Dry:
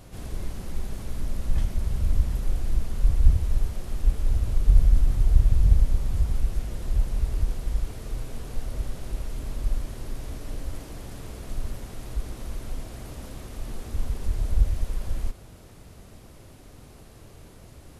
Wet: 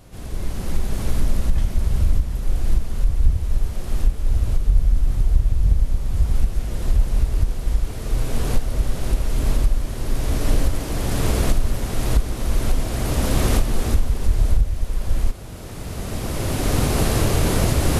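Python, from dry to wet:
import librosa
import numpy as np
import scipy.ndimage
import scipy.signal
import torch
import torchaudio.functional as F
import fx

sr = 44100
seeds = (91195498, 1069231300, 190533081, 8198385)

y = fx.recorder_agc(x, sr, target_db=-8.0, rise_db_per_s=14.0, max_gain_db=30)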